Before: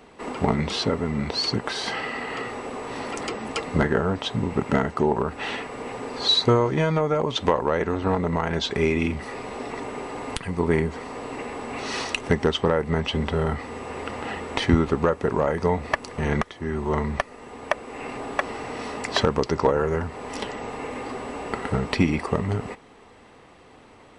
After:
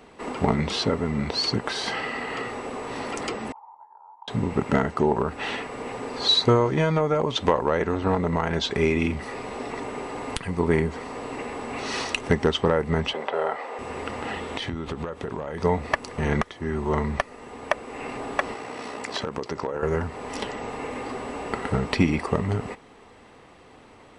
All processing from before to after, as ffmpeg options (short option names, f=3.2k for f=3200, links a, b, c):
-filter_complex "[0:a]asettb=1/sr,asplit=3[a][b][c];[a]atrim=end=3.524[d];[b]atrim=start=3.52:end=4.28,asetpts=PTS-STARTPTS,afade=t=in:d=0.004:c=qsin,afade=t=out:st=0.756:d=0.004:c=qsin,acompressor=threshold=-27dB:ratio=4:attack=3.2:release=140:knee=1:detection=peak,asuperpass=centerf=900:order=4:qfactor=6.8[e];[c]atrim=start=4.276[f];[d][e]acrossfade=d=0.004:c1=hsin:c2=qsin[g];[g][f]acrossfade=d=0.004:c1=qsin:c2=hsin,asettb=1/sr,asplit=3[h][i][j];[h]atrim=end=13.134[k];[i]atrim=start=13.13:end=13.79,asetpts=PTS-STARTPTS,afade=t=in:d=0.004:c=qsin,afade=t=out:st=0.656:d=0.004:c=qsin,acrossover=split=3600[l][m];[m]acompressor=threshold=-60dB:ratio=4:attack=1:release=60[n];[l][n]amix=inputs=2:normalize=0,highpass=f=600:t=q:w=2[o];[j]atrim=start=13.786[p];[k][o]acrossfade=d=0.004:c1=hsin:c2=qsin[q];[q][p]acrossfade=d=0.004:c1=qsin:c2=hsin,asettb=1/sr,asplit=3[r][s][t];[r]atrim=end=14.344[u];[s]atrim=start=14.34:end=15.64,asetpts=PTS-STARTPTS,afade=t=in:d=0.004:c=qsin,afade=t=out:st=1.296:d=0.004:c=qsin,equalizer=f=3.4k:w=3:g=6.5,acompressor=threshold=-26dB:ratio=16:attack=3.2:release=140:knee=1:detection=peak[v];[t]atrim=start=15.636[w];[u][v]acrossfade=d=0.004:c1=hsin:c2=qsin[x];[x][w]acrossfade=d=0.004:c1=qsin:c2=hsin,asettb=1/sr,asplit=3[y][z][aa];[y]atrim=end=18.544[ab];[z]atrim=start=18.54:end=19.83,asetpts=PTS-STARTPTS,afade=t=in:d=0.004:c=qsin,afade=t=out:st=1.286:d=0.004:c=qsin,highpass=f=180:p=1,tremolo=f=63:d=0.462,acompressor=threshold=-25dB:ratio=4:attack=3.2:release=140:knee=1:detection=peak[ac];[aa]atrim=start=19.826[ad];[ab][ac]acrossfade=d=0.004:c1=hsin:c2=qsin[ae];[ae][ad]acrossfade=d=0.004:c1=qsin:c2=hsin"